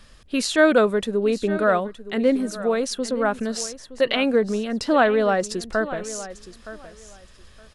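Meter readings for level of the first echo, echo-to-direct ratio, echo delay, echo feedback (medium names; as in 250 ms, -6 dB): -15.0 dB, -15.0 dB, 918 ms, 19%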